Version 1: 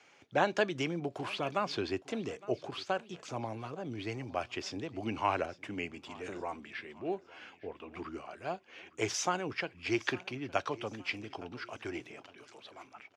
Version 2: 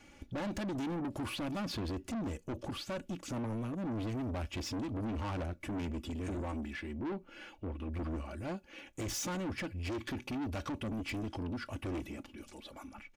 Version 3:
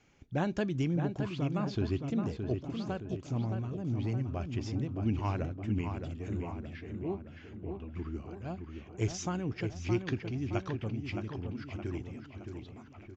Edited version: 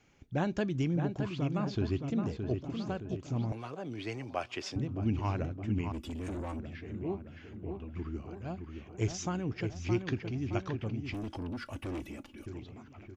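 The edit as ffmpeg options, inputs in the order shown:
-filter_complex "[1:a]asplit=2[a][b];[2:a]asplit=4[c][d][e][f];[c]atrim=end=3.522[g];[0:a]atrim=start=3.518:end=4.762[h];[d]atrim=start=4.758:end=5.922[i];[a]atrim=start=5.918:end=6.592[j];[e]atrim=start=6.588:end=11.142[k];[b]atrim=start=11.138:end=12.462[l];[f]atrim=start=12.458[m];[g][h]acrossfade=d=0.004:c1=hsin:c2=hsin[n];[n][i]acrossfade=d=0.004:c1=hsin:c2=hsin[o];[o][j]acrossfade=d=0.004:c1=hsin:c2=hsin[p];[p][k]acrossfade=d=0.004:c1=hsin:c2=hsin[q];[q][l]acrossfade=d=0.004:c1=hsin:c2=hsin[r];[r][m]acrossfade=d=0.004:c1=hsin:c2=hsin"

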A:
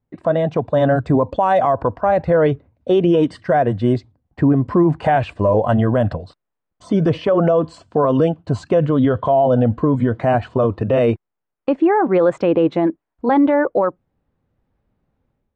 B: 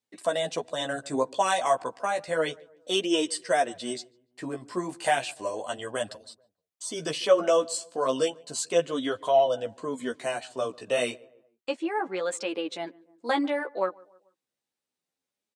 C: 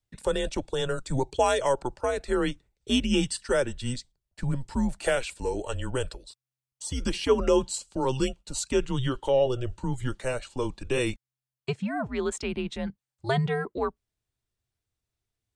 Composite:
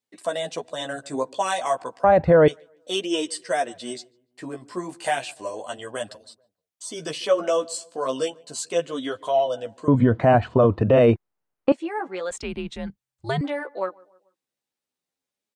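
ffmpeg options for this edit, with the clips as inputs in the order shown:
-filter_complex "[0:a]asplit=2[a][b];[1:a]asplit=4[c][d][e][f];[c]atrim=end=2.042[g];[a]atrim=start=2.038:end=2.482[h];[d]atrim=start=2.478:end=9.882[i];[b]atrim=start=9.878:end=11.722[j];[e]atrim=start=11.718:end=12.312[k];[2:a]atrim=start=12.308:end=13.412[l];[f]atrim=start=13.408[m];[g][h]acrossfade=d=0.004:c1=hsin:c2=hsin[n];[n][i]acrossfade=d=0.004:c1=hsin:c2=hsin[o];[o][j]acrossfade=d=0.004:c1=hsin:c2=hsin[p];[p][k]acrossfade=d=0.004:c1=hsin:c2=hsin[q];[q][l]acrossfade=d=0.004:c1=hsin:c2=hsin[r];[r][m]acrossfade=d=0.004:c1=hsin:c2=hsin"

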